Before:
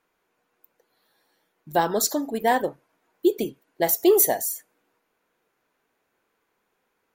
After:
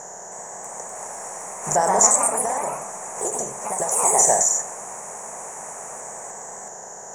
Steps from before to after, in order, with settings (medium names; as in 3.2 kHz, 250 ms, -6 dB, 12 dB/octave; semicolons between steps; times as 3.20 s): spectral levelling over time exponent 0.4; FFT filter 130 Hz 0 dB, 200 Hz -6 dB, 300 Hz -23 dB, 580 Hz 0 dB, 1.5 kHz -4 dB, 4.1 kHz -28 dB, 6.7 kHz +14 dB, 12 kHz -28 dB; 2.09–4.19 s: compression 6:1, threshold -24 dBFS, peak gain reduction 10.5 dB; ever faster or slower copies 318 ms, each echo +2 st, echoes 3; swell ahead of each attack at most 120 dB/s